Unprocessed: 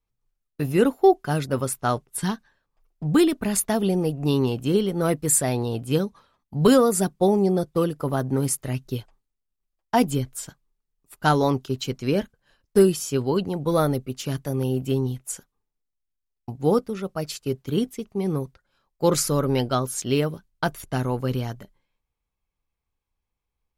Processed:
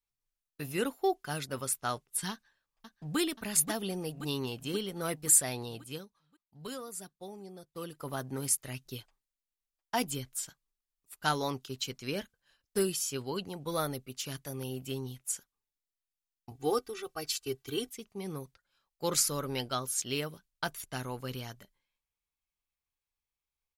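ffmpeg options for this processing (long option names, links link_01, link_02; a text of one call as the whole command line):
ffmpeg -i in.wav -filter_complex "[0:a]asplit=2[link_01][link_02];[link_02]afade=type=in:start_time=2.31:duration=0.01,afade=type=out:start_time=3.18:duration=0.01,aecho=0:1:530|1060|1590|2120|2650|3180|3710|4240|4770|5300|5830:0.421697|0.295188|0.206631|0.144642|0.101249|0.0708745|0.0496122|0.0347285|0.02431|0.017017|0.0119119[link_03];[link_01][link_03]amix=inputs=2:normalize=0,asettb=1/sr,asplit=3[link_04][link_05][link_06];[link_04]atrim=end=16.514[link_07];[link_05]atrim=start=16.51:end=17.89,asetpts=PTS-STARTPTS,afade=type=in:duration=0.004:curve=qsin,afade=type=out:start_time=1.376:duration=0.004:curve=qsin,aecho=1:1:2.6:0.98,atrim=end_sample=60858[link_08];[link_06]atrim=start=17.886[link_09];[link_07][link_08]acrossfade=duration=0.004:curve1=hsin:curve2=qsin[link_10];[link_10][link_09]acrossfade=duration=0.004:curve1=qsin:curve2=hsin,asplit=3[link_11][link_12][link_13];[link_11]atrim=end=6.09,asetpts=PTS-STARTPTS,afade=type=out:start_time=5.64:duration=0.45:silence=0.223872[link_14];[link_12]atrim=start=6.09:end=7.66,asetpts=PTS-STARTPTS,volume=-13dB[link_15];[link_13]atrim=start=7.66,asetpts=PTS-STARTPTS,afade=type=in:duration=0.45:silence=0.223872[link_16];[link_14][link_15][link_16]concat=n=3:v=0:a=1,tiltshelf=frequency=1200:gain=-6.5,volume=-8.5dB" out.wav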